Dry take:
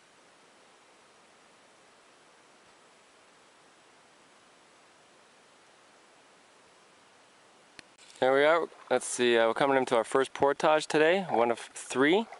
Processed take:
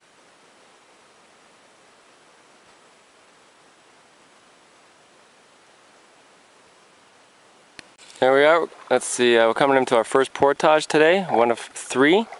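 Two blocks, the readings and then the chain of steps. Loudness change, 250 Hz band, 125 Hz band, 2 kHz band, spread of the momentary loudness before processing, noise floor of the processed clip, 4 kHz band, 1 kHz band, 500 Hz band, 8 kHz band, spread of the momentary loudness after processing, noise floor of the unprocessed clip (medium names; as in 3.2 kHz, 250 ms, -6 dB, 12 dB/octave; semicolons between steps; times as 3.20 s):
+8.0 dB, +8.0 dB, +8.0 dB, +8.0 dB, 6 LU, -55 dBFS, +8.0 dB, +8.0 dB, +8.0 dB, +8.0 dB, 6 LU, -60 dBFS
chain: expander -56 dBFS; trim +8 dB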